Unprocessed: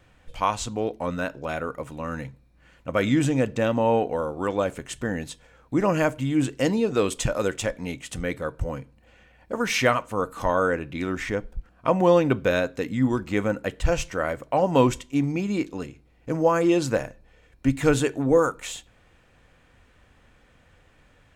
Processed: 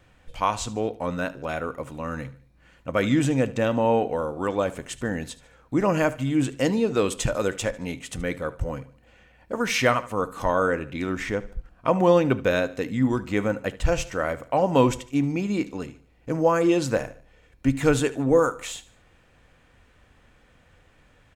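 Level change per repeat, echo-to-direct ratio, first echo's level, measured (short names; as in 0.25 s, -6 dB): -7.5 dB, -17.5 dB, -18.5 dB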